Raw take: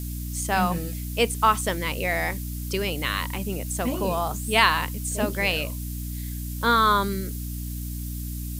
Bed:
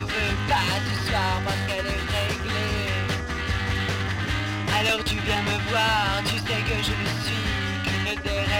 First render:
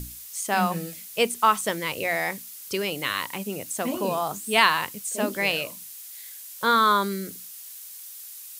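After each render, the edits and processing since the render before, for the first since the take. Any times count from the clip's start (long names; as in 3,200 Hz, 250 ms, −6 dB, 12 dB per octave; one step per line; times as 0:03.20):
mains-hum notches 60/120/180/240/300 Hz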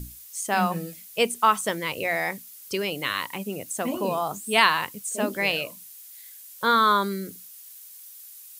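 broadband denoise 6 dB, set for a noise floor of −42 dBFS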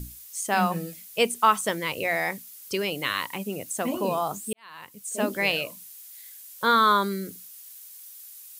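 0:04.53–0:05.20: fade in quadratic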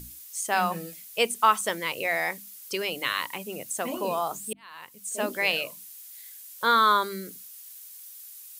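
low-shelf EQ 300 Hz −8.5 dB
mains-hum notches 50/100/150/200/250/300 Hz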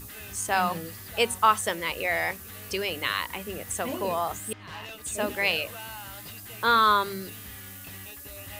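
mix in bed −19.5 dB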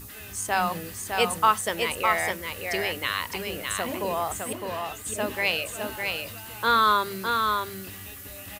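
single-tap delay 608 ms −4.5 dB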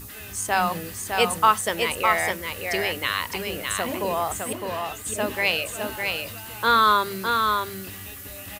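level +2.5 dB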